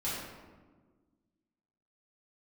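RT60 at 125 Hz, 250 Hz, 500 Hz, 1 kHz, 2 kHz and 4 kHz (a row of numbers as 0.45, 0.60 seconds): 1.8, 2.1, 1.6, 1.3, 1.0, 0.75 seconds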